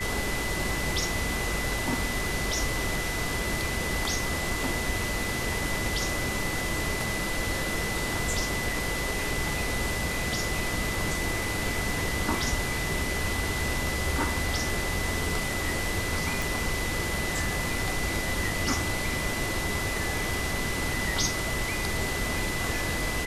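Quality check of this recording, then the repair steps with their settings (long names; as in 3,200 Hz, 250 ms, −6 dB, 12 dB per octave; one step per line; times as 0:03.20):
whistle 2,000 Hz −33 dBFS
0:16.42: click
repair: click removal
notch filter 2,000 Hz, Q 30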